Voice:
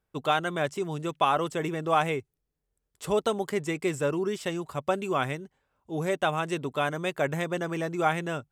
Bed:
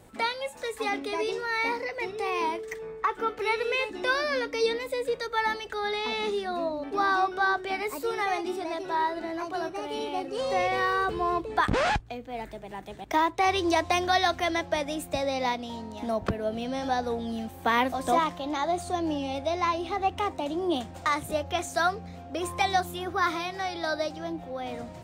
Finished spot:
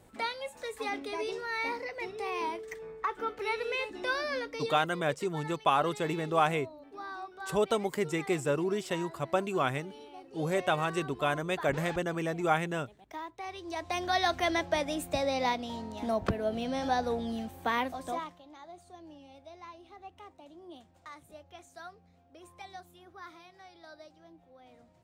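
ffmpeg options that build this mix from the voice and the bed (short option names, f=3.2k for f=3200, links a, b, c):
-filter_complex "[0:a]adelay=4450,volume=-2dB[a];[1:a]volume=10dB,afade=t=out:st=4.34:d=0.56:silence=0.266073,afade=t=in:st=13.66:d=0.79:silence=0.16788,afade=t=out:st=17.18:d=1.26:silence=0.1[b];[a][b]amix=inputs=2:normalize=0"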